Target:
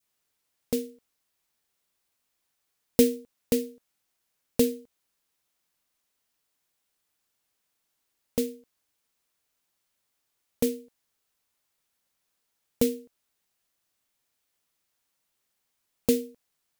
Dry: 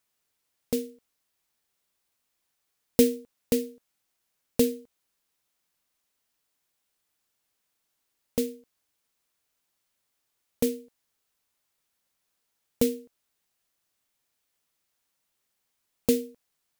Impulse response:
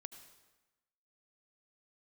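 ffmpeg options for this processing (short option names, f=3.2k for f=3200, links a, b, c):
-af "adynamicequalizer=threshold=0.00891:dfrequency=1100:dqfactor=0.77:tfrequency=1100:tqfactor=0.77:attack=5:release=100:ratio=0.375:range=2.5:mode=cutabove:tftype=bell"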